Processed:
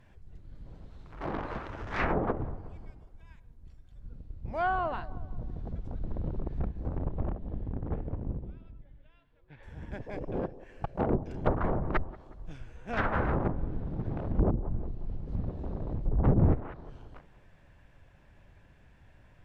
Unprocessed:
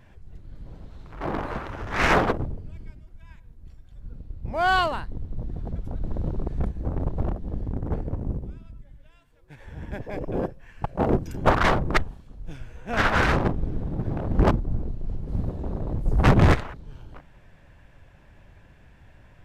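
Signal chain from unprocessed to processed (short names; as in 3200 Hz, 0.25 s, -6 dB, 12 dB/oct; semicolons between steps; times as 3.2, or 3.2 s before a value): 6.97–9.63 LPF 3900 Hz 24 dB/oct; band-limited delay 0.181 s, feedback 48%, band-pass 490 Hz, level -17 dB; treble ducked by the level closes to 550 Hz, closed at -14.5 dBFS; Doppler distortion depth 0.38 ms; gain -6 dB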